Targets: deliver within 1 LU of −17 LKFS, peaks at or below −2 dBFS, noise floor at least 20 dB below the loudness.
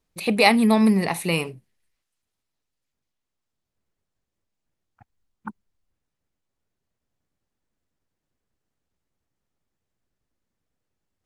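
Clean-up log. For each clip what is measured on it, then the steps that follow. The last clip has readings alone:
integrated loudness −19.5 LKFS; sample peak −2.0 dBFS; target loudness −17.0 LKFS
→ level +2.5 dB
brickwall limiter −2 dBFS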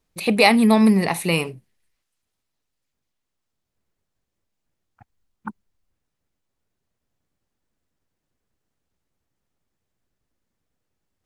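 integrated loudness −17.5 LKFS; sample peak −2.0 dBFS; background noise floor −80 dBFS

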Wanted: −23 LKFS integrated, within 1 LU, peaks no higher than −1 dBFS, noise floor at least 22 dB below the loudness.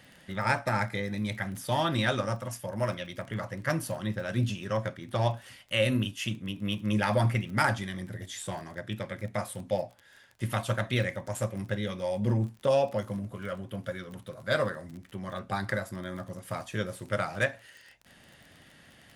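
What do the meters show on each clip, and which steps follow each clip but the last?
crackle rate 24 per second; integrated loudness −31.5 LKFS; sample peak −12.0 dBFS; target loudness −23.0 LKFS
→ click removal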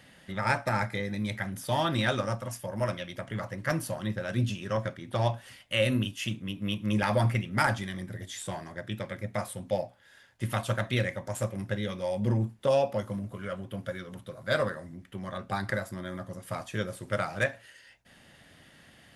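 crackle rate 0 per second; integrated loudness −31.5 LKFS; sample peak −12.0 dBFS; target loudness −23.0 LKFS
→ level +8.5 dB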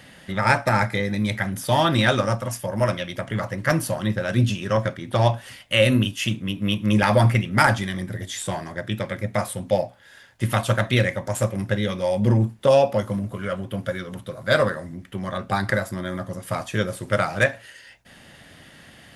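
integrated loudness −23.0 LKFS; sample peak −3.5 dBFS; background noise floor −49 dBFS

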